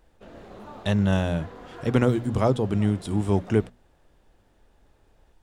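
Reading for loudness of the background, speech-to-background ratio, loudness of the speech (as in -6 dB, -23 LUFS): -44.0 LUFS, 19.5 dB, -24.5 LUFS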